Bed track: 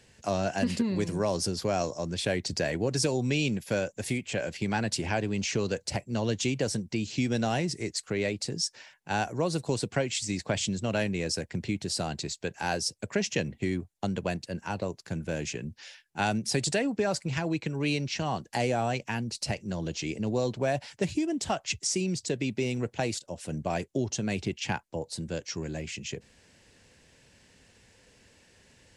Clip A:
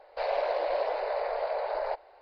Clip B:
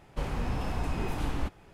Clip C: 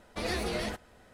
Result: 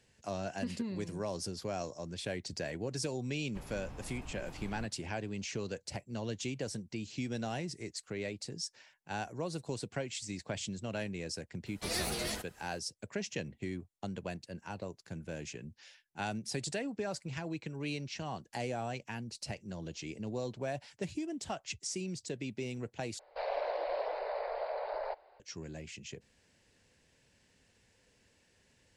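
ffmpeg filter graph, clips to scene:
ffmpeg -i bed.wav -i cue0.wav -i cue1.wav -i cue2.wav -filter_complex "[0:a]volume=-9.5dB[link_01];[3:a]crystalizer=i=3:c=0[link_02];[link_01]asplit=2[link_03][link_04];[link_03]atrim=end=23.194[link_05];[1:a]atrim=end=2.21,asetpts=PTS-STARTPTS,volume=-6.5dB[link_06];[link_04]atrim=start=25.396[link_07];[2:a]atrim=end=1.73,asetpts=PTS-STARTPTS,volume=-15.5dB,afade=type=in:duration=0.004:curve=hsin,afade=type=out:start_time=1.726:duration=0.004:curve=hsin,adelay=3380[link_08];[link_02]atrim=end=1.13,asetpts=PTS-STARTPTS,volume=-6.5dB,afade=type=in:duration=0.004:curve=hsin,afade=type=out:start_time=1.126:duration=0.004:curve=hsin,adelay=11660[link_09];[link_05][link_06]acrossfade=duration=0.004:curve1=hsin:curve2=hsin[link_10];[link_10][link_07]acrossfade=duration=0.004:curve1=hsin:curve2=hsin[link_11];[link_11][link_08][link_09]amix=inputs=3:normalize=0" out.wav

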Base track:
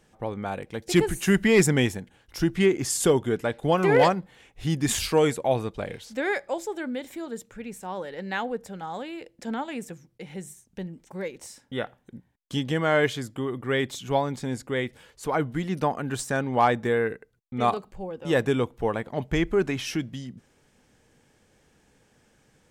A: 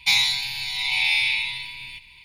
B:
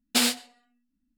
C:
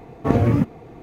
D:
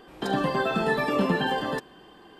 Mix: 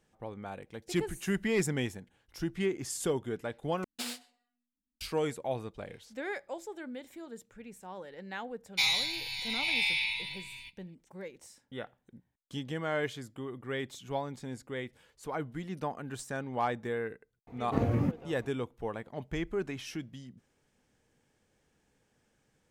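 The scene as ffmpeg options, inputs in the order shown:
ffmpeg -i bed.wav -i cue0.wav -i cue1.wav -i cue2.wav -filter_complex "[0:a]volume=-10.5dB[link_01];[1:a]agate=range=-33dB:threshold=-38dB:ratio=3:release=100:detection=peak[link_02];[link_01]asplit=2[link_03][link_04];[link_03]atrim=end=3.844[link_05];[2:a]atrim=end=1.17,asetpts=PTS-STARTPTS,volume=-16dB[link_06];[link_04]atrim=start=5.006[link_07];[link_02]atrim=end=2.24,asetpts=PTS-STARTPTS,volume=-8.5dB,afade=type=in:duration=0.004:curve=hsin,afade=type=out:start_time=2.236:duration=0.004:curve=hsin,adelay=8710[link_08];[3:a]atrim=end=1.02,asetpts=PTS-STARTPTS,volume=-11dB,afade=type=in:duration=0.004:curve=hsin,afade=type=out:start_time=1.016:duration=0.004:curve=hsin,adelay=17470[link_09];[link_05][link_06]acrossfade=duration=0.004:curve1=hsin:curve2=hsin[link_10];[link_10][link_07]acrossfade=duration=0.004:curve1=hsin:curve2=hsin[link_11];[link_11][link_08][link_09]amix=inputs=3:normalize=0" out.wav

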